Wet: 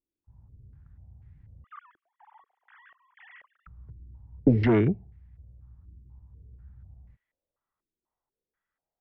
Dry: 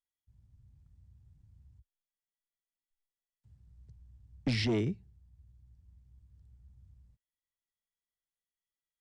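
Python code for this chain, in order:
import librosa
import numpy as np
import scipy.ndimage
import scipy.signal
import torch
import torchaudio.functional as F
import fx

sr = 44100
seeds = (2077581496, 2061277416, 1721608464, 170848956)

y = fx.sine_speech(x, sr, at=(1.64, 3.67))
y = fx.filter_held_lowpass(y, sr, hz=4.1, low_hz=340.0, high_hz=2000.0)
y = y * librosa.db_to_amplitude(8.5)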